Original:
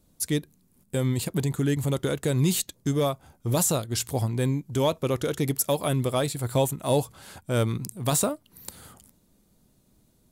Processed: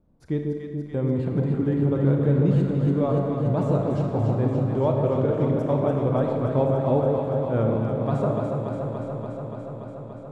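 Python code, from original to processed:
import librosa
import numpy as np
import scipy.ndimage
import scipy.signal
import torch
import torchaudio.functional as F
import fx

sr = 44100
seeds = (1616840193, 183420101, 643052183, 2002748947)

y = scipy.signal.sosfilt(scipy.signal.butter(2, 1100.0, 'lowpass', fs=sr, output='sos'), x)
y = fx.echo_alternate(y, sr, ms=144, hz=800.0, feedback_pct=89, wet_db=-4)
y = fx.rev_schroeder(y, sr, rt60_s=1.6, comb_ms=28, drr_db=4.0)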